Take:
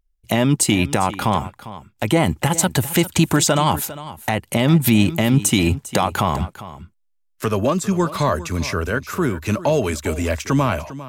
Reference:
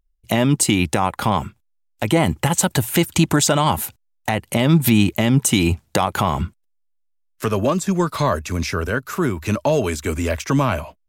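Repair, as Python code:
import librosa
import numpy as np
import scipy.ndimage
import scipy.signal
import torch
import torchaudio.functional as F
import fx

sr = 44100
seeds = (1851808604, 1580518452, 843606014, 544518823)

y = fx.fix_echo_inverse(x, sr, delay_ms=401, level_db=-15.5)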